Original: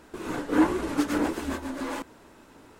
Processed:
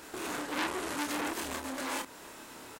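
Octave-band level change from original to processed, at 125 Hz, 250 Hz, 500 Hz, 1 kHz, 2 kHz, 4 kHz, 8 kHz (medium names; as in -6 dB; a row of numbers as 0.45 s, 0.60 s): -12.0 dB, -12.5 dB, -8.0 dB, -3.5 dB, -1.0 dB, +2.5 dB, +3.5 dB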